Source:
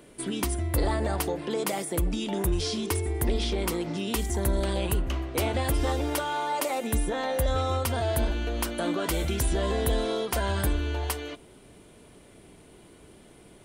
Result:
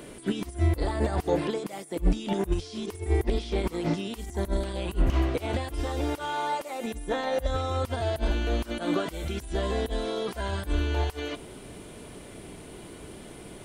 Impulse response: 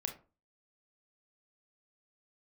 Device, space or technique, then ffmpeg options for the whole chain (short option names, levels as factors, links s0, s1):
de-esser from a sidechain: -filter_complex "[0:a]asplit=2[s0][s1];[s1]highpass=6100,apad=whole_len=601694[s2];[s0][s2]sidechaincompress=threshold=0.00158:ratio=16:attack=1.9:release=42,volume=2.66"